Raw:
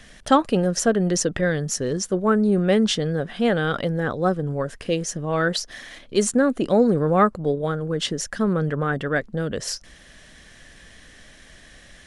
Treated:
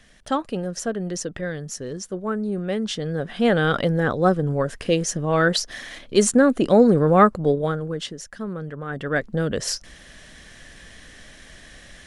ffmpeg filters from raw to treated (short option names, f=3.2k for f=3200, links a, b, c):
-af "volume=14.5dB,afade=t=in:st=2.86:d=0.78:silence=0.316228,afade=t=out:st=7.52:d=0.61:silence=0.251189,afade=t=in:st=8.85:d=0.46:silence=0.266073"